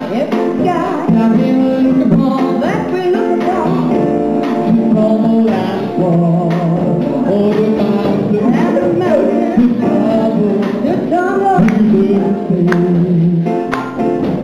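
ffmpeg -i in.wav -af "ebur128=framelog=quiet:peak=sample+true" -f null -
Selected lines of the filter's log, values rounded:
Integrated loudness:
  I:         -12.8 LUFS
  Threshold: -22.8 LUFS
Loudness range:
  LRA:         0.9 LU
  Threshold: -32.7 LUFS
  LRA low:   -13.1 LUFS
  LRA high:  -12.2 LUFS
Sample peak:
  Peak:       -3.1 dBFS
True peak:
  Peak:       -3.1 dBFS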